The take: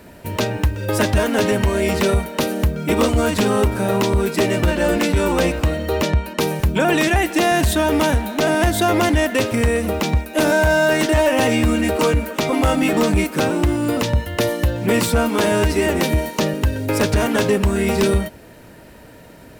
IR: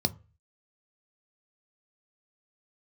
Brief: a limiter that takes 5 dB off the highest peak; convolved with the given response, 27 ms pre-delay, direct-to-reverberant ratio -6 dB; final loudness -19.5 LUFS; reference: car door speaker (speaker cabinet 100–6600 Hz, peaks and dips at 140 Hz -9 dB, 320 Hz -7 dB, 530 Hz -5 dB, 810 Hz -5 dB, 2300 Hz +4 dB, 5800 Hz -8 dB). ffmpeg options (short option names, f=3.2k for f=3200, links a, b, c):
-filter_complex "[0:a]alimiter=limit=-13.5dB:level=0:latency=1,asplit=2[a][b];[1:a]atrim=start_sample=2205,adelay=27[c];[b][c]afir=irnorm=-1:irlink=0,volume=-1dB[d];[a][d]amix=inputs=2:normalize=0,highpass=100,equalizer=f=140:t=q:w=4:g=-9,equalizer=f=320:t=q:w=4:g=-7,equalizer=f=530:t=q:w=4:g=-5,equalizer=f=810:t=q:w=4:g=-5,equalizer=f=2.3k:t=q:w=4:g=4,equalizer=f=5.8k:t=q:w=4:g=-8,lowpass=f=6.6k:w=0.5412,lowpass=f=6.6k:w=1.3066,volume=-6dB"